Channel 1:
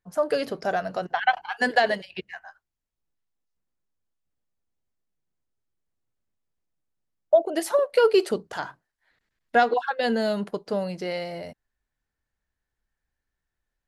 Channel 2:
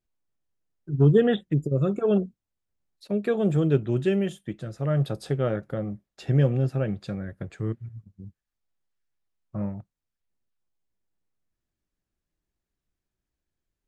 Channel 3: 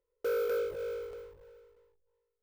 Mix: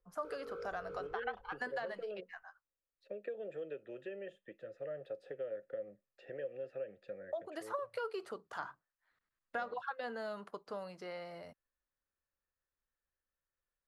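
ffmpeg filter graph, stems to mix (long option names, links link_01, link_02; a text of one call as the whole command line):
ffmpeg -i stem1.wav -i stem2.wav -i stem3.wav -filter_complex "[0:a]volume=-14.5dB,asplit=2[link_01][link_02];[1:a]acrossover=split=330|1100[link_03][link_04][link_05];[link_03]acompressor=threshold=-29dB:ratio=4[link_06];[link_04]acompressor=threshold=-28dB:ratio=4[link_07];[link_05]acompressor=threshold=-46dB:ratio=4[link_08];[link_06][link_07][link_08]amix=inputs=3:normalize=0,asplit=3[link_09][link_10][link_11];[link_09]bandpass=frequency=530:width_type=q:width=8,volume=0dB[link_12];[link_10]bandpass=frequency=1840:width_type=q:width=8,volume=-6dB[link_13];[link_11]bandpass=frequency=2480:width_type=q:width=8,volume=-9dB[link_14];[link_12][link_13][link_14]amix=inputs=3:normalize=0,volume=-1.5dB[link_15];[2:a]acompressor=threshold=-36dB:ratio=6,aemphasis=mode=reproduction:type=riaa,volume=-9dB[link_16];[link_02]apad=whole_len=106935[link_17];[link_16][link_17]sidechaincompress=threshold=-41dB:ratio=8:attack=16:release=256[link_18];[link_01][link_15][link_18]amix=inputs=3:normalize=0,acrossover=split=370|2300[link_19][link_20][link_21];[link_19]acompressor=threshold=-54dB:ratio=4[link_22];[link_20]acompressor=threshold=-41dB:ratio=4[link_23];[link_21]acompressor=threshold=-58dB:ratio=4[link_24];[link_22][link_23][link_24]amix=inputs=3:normalize=0,equalizer=frequency=1200:width=2.3:gain=11.5" out.wav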